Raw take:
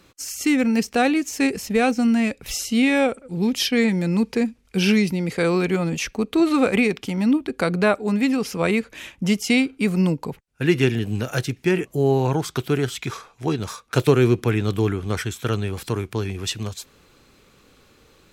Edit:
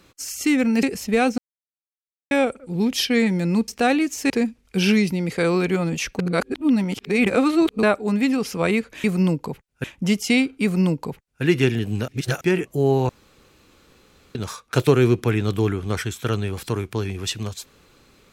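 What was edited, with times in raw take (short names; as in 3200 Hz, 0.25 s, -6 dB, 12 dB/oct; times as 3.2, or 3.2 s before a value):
0.83–1.45 move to 4.3
2–2.93 mute
6.19–7.83 reverse
9.83–10.63 copy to 9.04
11.28–11.61 reverse
12.29–13.55 room tone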